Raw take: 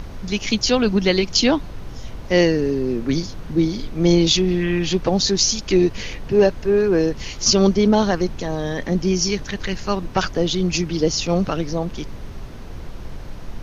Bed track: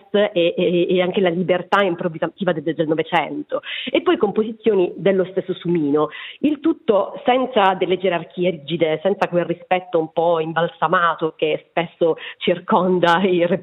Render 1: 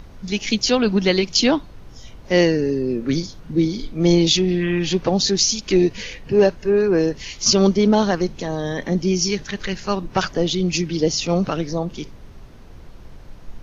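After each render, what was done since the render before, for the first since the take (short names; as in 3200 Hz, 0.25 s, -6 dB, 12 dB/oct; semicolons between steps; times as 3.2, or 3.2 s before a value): noise print and reduce 8 dB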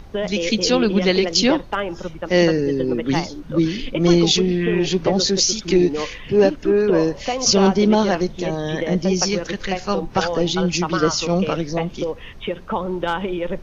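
add bed track -8 dB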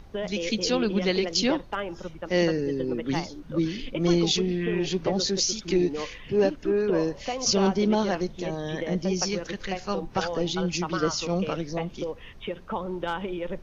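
gain -7.5 dB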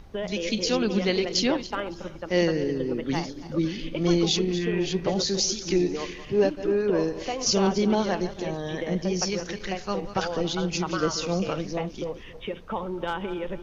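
regenerating reverse delay 0.139 s, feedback 49%, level -13 dB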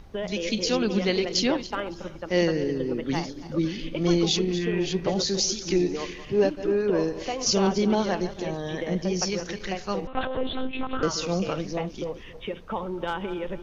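10.07–11.03 monotone LPC vocoder at 8 kHz 260 Hz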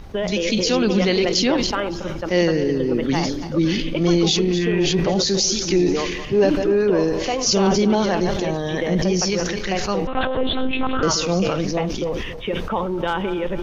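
in parallel at +2 dB: limiter -19 dBFS, peak gain reduction 9 dB; on the sum: sustainer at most 37 dB/s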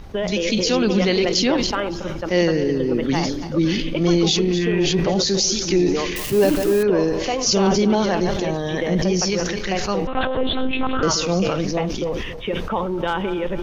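6.16–6.83 switching spikes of -18.5 dBFS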